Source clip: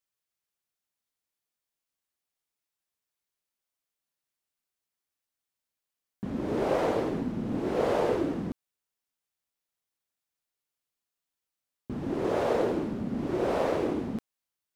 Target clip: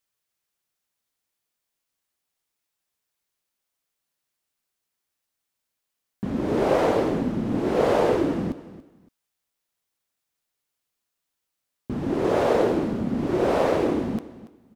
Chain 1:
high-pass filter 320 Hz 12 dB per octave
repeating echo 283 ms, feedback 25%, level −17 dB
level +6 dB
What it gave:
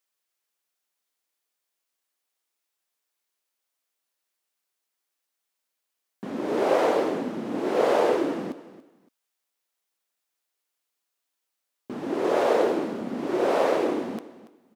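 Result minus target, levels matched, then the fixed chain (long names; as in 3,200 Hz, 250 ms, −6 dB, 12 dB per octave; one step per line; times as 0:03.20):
250 Hz band −3.0 dB
repeating echo 283 ms, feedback 25%, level −17 dB
level +6 dB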